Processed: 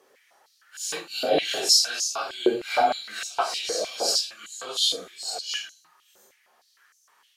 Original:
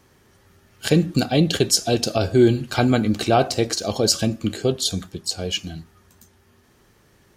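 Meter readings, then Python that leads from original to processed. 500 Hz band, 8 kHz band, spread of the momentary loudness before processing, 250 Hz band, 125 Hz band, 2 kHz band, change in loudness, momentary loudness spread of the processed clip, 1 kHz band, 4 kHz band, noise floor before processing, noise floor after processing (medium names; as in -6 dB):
-7.0 dB, -1.0 dB, 10 LU, -15.5 dB, under -30 dB, -2.5 dB, -4.0 dB, 14 LU, -1.0 dB, +0.5 dB, -57 dBFS, -65 dBFS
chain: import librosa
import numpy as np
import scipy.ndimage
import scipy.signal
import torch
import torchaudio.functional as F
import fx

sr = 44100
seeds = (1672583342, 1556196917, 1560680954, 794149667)

y = fx.phase_scramble(x, sr, seeds[0], window_ms=200)
y = fx.filter_held_highpass(y, sr, hz=6.5, low_hz=500.0, high_hz=6300.0)
y = y * librosa.db_to_amplitude(-4.5)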